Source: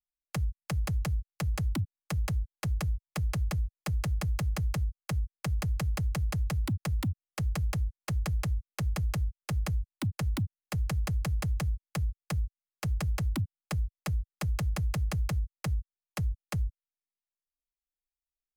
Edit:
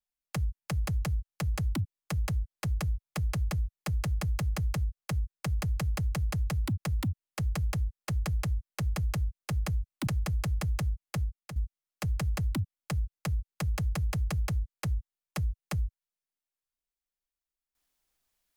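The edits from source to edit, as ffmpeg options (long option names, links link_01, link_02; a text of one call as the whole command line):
ffmpeg -i in.wav -filter_complex "[0:a]asplit=3[link_01][link_02][link_03];[link_01]atrim=end=10.072[link_04];[link_02]atrim=start=10.878:end=12.37,asetpts=PTS-STARTPTS,afade=type=out:start_time=1.122:duration=0.37:silence=0.266073[link_05];[link_03]atrim=start=12.37,asetpts=PTS-STARTPTS,afade=type=in:duration=0.004:curve=hsin:silence=0.266073[link_06];[link_05][link_06]concat=n=2:v=0:a=1[link_07];[link_04][link_07]acrossfade=duration=0.004:curve1=hsin:curve2=hsin" out.wav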